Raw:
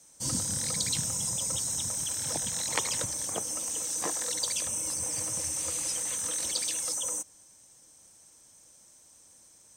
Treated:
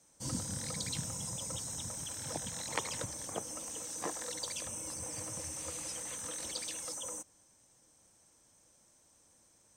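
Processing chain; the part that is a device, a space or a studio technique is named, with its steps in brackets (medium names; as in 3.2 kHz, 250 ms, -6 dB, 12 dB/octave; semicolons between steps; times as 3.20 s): behind a face mask (treble shelf 3 kHz -8 dB); trim -3 dB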